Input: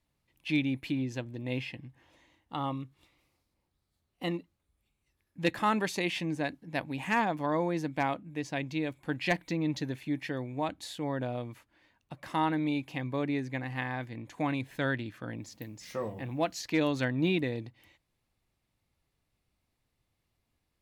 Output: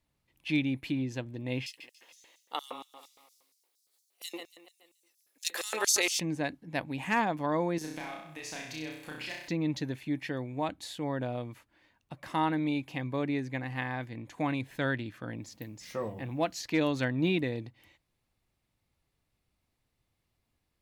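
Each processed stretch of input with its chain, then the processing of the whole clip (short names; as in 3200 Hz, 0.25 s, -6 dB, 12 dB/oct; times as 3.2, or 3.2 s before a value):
1.66–6.2 tilt +4 dB/oct + feedback echo 0.142 s, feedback 49%, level -13 dB + LFO high-pass square 4.3 Hz 440–5800 Hz
7.78–9.48 tilt +3 dB/oct + compressor 5:1, threshold -39 dBFS + flutter echo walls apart 5.5 m, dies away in 0.73 s
whole clip: dry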